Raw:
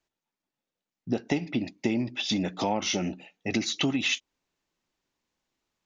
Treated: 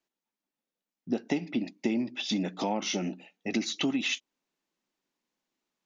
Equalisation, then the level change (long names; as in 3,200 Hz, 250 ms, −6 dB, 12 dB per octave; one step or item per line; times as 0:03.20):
low shelf with overshoot 140 Hz −11.5 dB, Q 1.5
−3.5 dB